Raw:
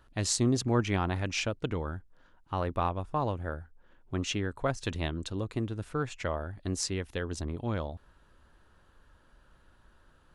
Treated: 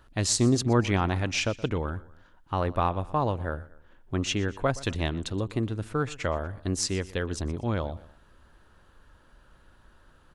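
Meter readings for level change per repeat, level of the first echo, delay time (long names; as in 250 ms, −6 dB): −6.0 dB, −19.5 dB, 121 ms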